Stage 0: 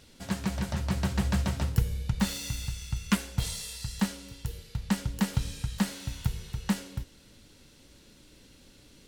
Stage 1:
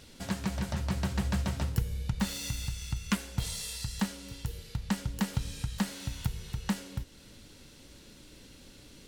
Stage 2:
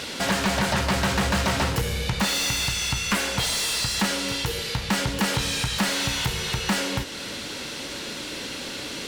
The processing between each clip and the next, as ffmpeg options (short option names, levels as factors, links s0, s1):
-af "acompressor=threshold=0.01:ratio=1.5,volume=1.41"
-filter_complex "[0:a]asplit=2[s0][s1];[s1]highpass=f=720:p=1,volume=44.7,asoftclip=type=tanh:threshold=0.224[s2];[s0][s2]amix=inputs=2:normalize=0,lowpass=f=3400:p=1,volume=0.501"